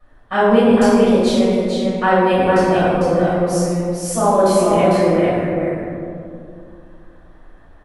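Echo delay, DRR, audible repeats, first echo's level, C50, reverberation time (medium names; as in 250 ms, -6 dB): 452 ms, -13.0 dB, 1, -2.5 dB, -5.0 dB, 2.4 s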